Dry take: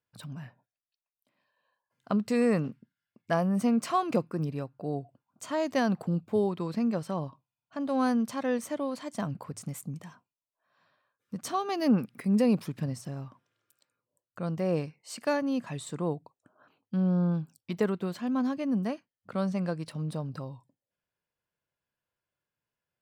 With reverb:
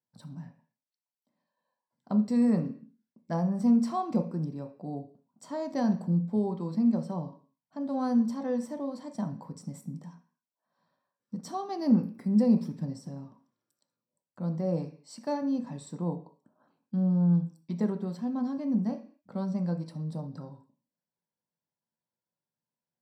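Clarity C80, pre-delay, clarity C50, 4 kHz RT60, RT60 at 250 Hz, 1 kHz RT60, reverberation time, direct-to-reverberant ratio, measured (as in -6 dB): 17.0 dB, 3 ms, 12.0 dB, n/a, 0.55 s, 0.45 s, 0.45 s, 4.0 dB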